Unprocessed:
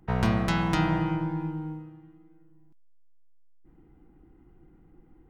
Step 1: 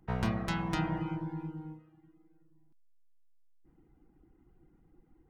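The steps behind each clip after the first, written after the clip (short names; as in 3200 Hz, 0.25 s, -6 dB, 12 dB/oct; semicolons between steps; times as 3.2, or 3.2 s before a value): reverb removal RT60 0.57 s; gain -6 dB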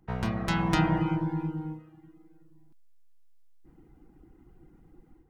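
AGC gain up to 8 dB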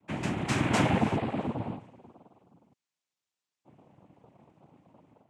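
noise vocoder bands 4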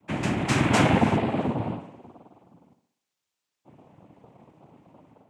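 tape echo 60 ms, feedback 54%, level -9 dB, low-pass 3900 Hz; gain +5 dB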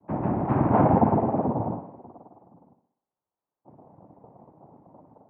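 ladder low-pass 1100 Hz, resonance 35%; gain +7.5 dB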